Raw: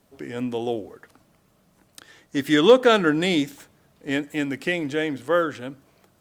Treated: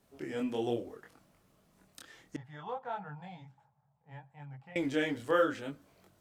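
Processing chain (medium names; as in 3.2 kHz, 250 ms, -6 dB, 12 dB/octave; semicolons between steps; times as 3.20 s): chorus voices 2, 0.66 Hz, delay 24 ms, depth 3.4 ms; 2.36–4.76 s: two resonant band-passes 330 Hz, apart 2.7 oct; trim -3 dB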